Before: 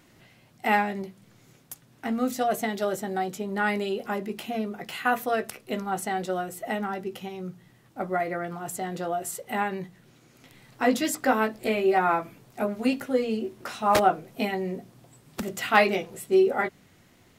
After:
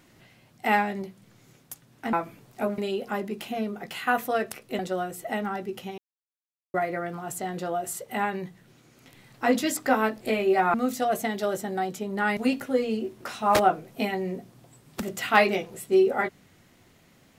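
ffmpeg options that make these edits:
ffmpeg -i in.wav -filter_complex "[0:a]asplit=8[link_01][link_02][link_03][link_04][link_05][link_06][link_07][link_08];[link_01]atrim=end=2.132[link_09];[link_02]atrim=start=12.118:end=12.772[link_10];[link_03]atrim=start=3.758:end=5.772[link_11];[link_04]atrim=start=6.168:end=7.36,asetpts=PTS-STARTPTS,afade=type=out:start_time=1.188:duration=0.004:curve=hsin[link_12];[link_05]atrim=start=7.36:end=8.12,asetpts=PTS-STARTPTS,volume=0[link_13];[link_06]atrim=start=8.12:end=12.122,asetpts=PTS-STARTPTS,afade=type=in:duration=0.004:curve=hsin[link_14];[link_07]atrim=start=2.128:end=3.762[link_15];[link_08]atrim=start=12.768[link_16];[link_09][link_10]acrossfade=duration=0.004:curve1=hsin:curve2=hsin[link_17];[link_17][link_11]acrossfade=duration=0.004:curve1=hsin:curve2=hsin[link_18];[link_12][link_13][link_14]concat=n=3:v=0:a=1[link_19];[link_18][link_19]acrossfade=duration=0.004:curve1=hsin:curve2=hsin[link_20];[link_20][link_15]acrossfade=duration=0.004:curve1=hsin:curve2=hsin[link_21];[link_21][link_16]acrossfade=duration=0.004:curve1=hsin:curve2=hsin" out.wav

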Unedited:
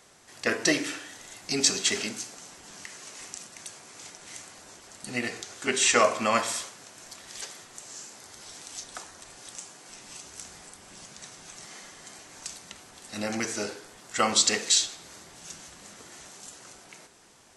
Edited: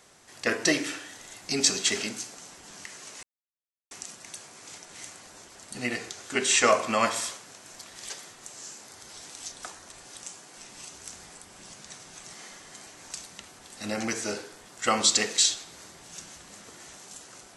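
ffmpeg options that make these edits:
ffmpeg -i in.wav -filter_complex "[0:a]asplit=2[link_01][link_02];[link_01]atrim=end=3.23,asetpts=PTS-STARTPTS,afade=type=out:start_time=3.226:duration=0.004:curve=hsin,apad=pad_dur=0.68[link_03];[link_02]atrim=start=3.23,asetpts=PTS-STARTPTS,afade=type=in:duration=0.004:curve=hsin[link_04];[link_03][link_04]concat=n=2:v=0:a=1" out.wav

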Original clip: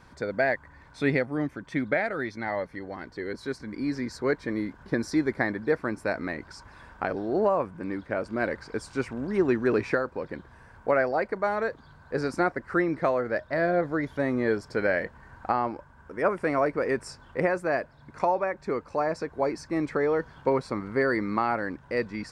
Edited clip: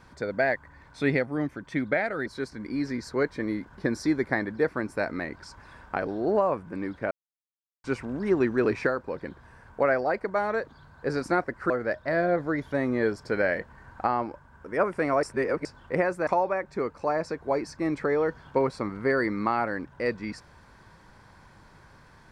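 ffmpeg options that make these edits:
ffmpeg -i in.wav -filter_complex "[0:a]asplit=8[link_01][link_02][link_03][link_04][link_05][link_06][link_07][link_08];[link_01]atrim=end=2.262[link_09];[link_02]atrim=start=3.338:end=8.19,asetpts=PTS-STARTPTS,afade=type=out:start_time=4.848:duration=0.004:curve=hsin[link_10];[link_03]atrim=start=8.19:end=8.92,asetpts=PTS-STARTPTS,volume=0[link_11];[link_04]atrim=start=8.92:end=12.782,asetpts=PTS-STARTPTS,afade=type=in:duration=0.004:curve=hsin[link_12];[link_05]atrim=start=13.148:end=16.682[link_13];[link_06]atrim=start=16.678:end=17.102,asetpts=PTS-STARTPTS,areverse[link_14];[link_07]atrim=start=17.098:end=17.722[link_15];[link_08]atrim=start=18.178[link_16];[link_10][link_11][link_12]concat=n=3:v=0:a=1[link_17];[link_09][link_17]acrossfade=duration=0.004:curve1=hsin:curve2=hsin[link_18];[link_18][link_13]acrossfade=duration=0.004:curve1=hsin:curve2=hsin[link_19];[link_19][link_14]acrossfade=duration=0.004:curve1=hsin:curve2=hsin[link_20];[link_20][link_15]acrossfade=duration=0.004:curve1=hsin:curve2=hsin[link_21];[link_21][link_16]acrossfade=duration=0.004:curve1=hsin:curve2=hsin" out.wav

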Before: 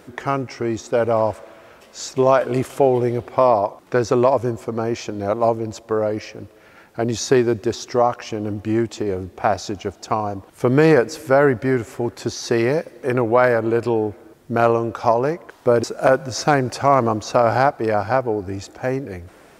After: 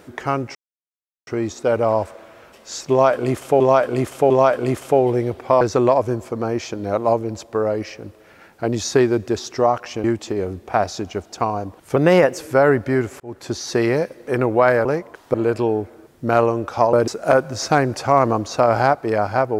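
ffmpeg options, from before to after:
ffmpeg -i in.wav -filter_complex "[0:a]asplit=12[link_01][link_02][link_03][link_04][link_05][link_06][link_07][link_08][link_09][link_10][link_11][link_12];[link_01]atrim=end=0.55,asetpts=PTS-STARTPTS,afade=type=out:start_time=0.546:duration=0.004:curve=hsin,apad=pad_dur=0.72[link_13];[link_02]atrim=start=0.55:end=2.882,asetpts=PTS-STARTPTS,afade=type=in:duration=0.004:curve=hsin[link_14];[link_03]atrim=start=2.178:end=2.882[link_15];[link_04]atrim=start=2.178:end=3.492[link_16];[link_05]atrim=start=3.968:end=8.402[link_17];[link_06]atrim=start=8.738:end=10.664[link_18];[link_07]atrim=start=10.66:end=11.14,asetpts=PTS-STARTPTS,asetrate=50274,aresample=44100,atrim=end_sample=18568,asetpts=PTS-STARTPTS[link_19];[link_08]atrim=start=11.136:end=11.96,asetpts=PTS-STARTPTS,afade=type=out:start_time=0.82:duration=0.004:curve=hsin[link_20];[link_09]atrim=start=11.96:end=13.612,asetpts=PTS-STARTPTS,afade=type=in:duration=0.44:curve=qsin[link_21];[link_10]atrim=start=15.198:end=15.692[link_22];[link_11]atrim=start=13.608:end=15.202[link_23];[link_12]atrim=start=15.688[link_24];[link_13][link_14]concat=n=2:v=0:a=1[link_25];[link_25][link_15]acrossfade=duration=0.004:curve1=hsin:curve2=hsin[link_26];[link_26][link_16]acrossfade=duration=0.004:curve1=hsin:curve2=hsin[link_27];[link_27][link_17]acrossfade=duration=0.004:curve1=hsin:curve2=hsin[link_28];[link_28][link_18]acrossfade=duration=0.004:curve1=hsin:curve2=hsin[link_29];[link_29][link_19]acrossfade=duration=0.004:curve1=hsin:curve2=hsin[link_30];[link_20][link_21]concat=n=2:v=0:a=1[link_31];[link_30][link_31]acrossfade=duration=0.004:curve1=hsin:curve2=hsin[link_32];[link_32][link_22]acrossfade=duration=0.004:curve1=hsin:curve2=hsin[link_33];[link_33][link_23]acrossfade=duration=0.004:curve1=hsin:curve2=hsin[link_34];[link_34][link_24]acrossfade=duration=0.004:curve1=hsin:curve2=hsin" out.wav

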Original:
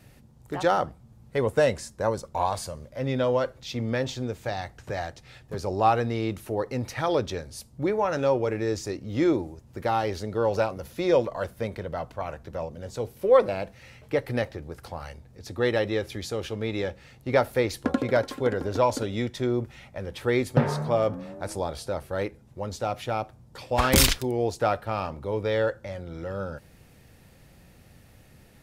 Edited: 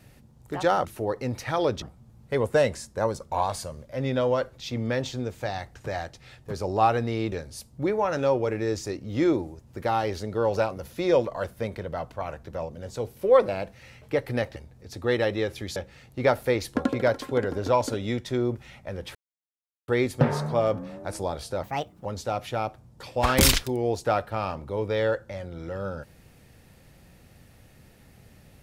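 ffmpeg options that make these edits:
ffmpeg -i in.wav -filter_complex "[0:a]asplit=9[link_01][link_02][link_03][link_04][link_05][link_06][link_07][link_08][link_09];[link_01]atrim=end=0.852[link_10];[link_02]atrim=start=6.348:end=7.322[link_11];[link_03]atrim=start=0.848:end=6.352[link_12];[link_04]atrim=start=7.318:end=14.562[link_13];[link_05]atrim=start=15.098:end=16.302[link_14];[link_06]atrim=start=16.848:end=20.24,asetpts=PTS-STARTPTS,afade=type=out:start_time=3.388:duration=0.004:curve=hsin,apad=pad_dur=0.73[link_15];[link_07]atrim=start=20.24:end=21.994,asetpts=PTS-STARTPTS,afade=type=in:duration=0.004:curve=hsin[link_16];[link_08]atrim=start=21.99:end=22.6,asetpts=PTS-STARTPTS,asetrate=63945,aresample=44100,atrim=end_sample=18552,asetpts=PTS-STARTPTS[link_17];[link_09]atrim=start=22.596[link_18];[link_10][link_11]acrossfade=duration=0.004:curve1=hsin:curve2=hsin[link_19];[link_19][link_12]acrossfade=duration=0.004:curve1=hsin:curve2=hsin[link_20];[link_20][link_13]acrossfade=duration=0.004:curve1=hsin:curve2=hsin[link_21];[link_21][link_14]acrossfade=duration=0.004:curve1=hsin:curve2=hsin[link_22];[link_15][link_16]concat=n=2:v=0:a=1[link_23];[link_22][link_23]acrossfade=duration=0.004:curve1=hsin:curve2=hsin[link_24];[link_24][link_17]acrossfade=duration=0.004:curve1=hsin:curve2=hsin[link_25];[link_25][link_18]acrossfade=duration=0.004:curve1=hsin:curve2=hsin" out.wav

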